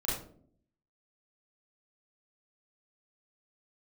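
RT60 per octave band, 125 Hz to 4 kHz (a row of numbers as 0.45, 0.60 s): 0.90, 0.85, 0.70, 0.45, 0.35, 0.30 s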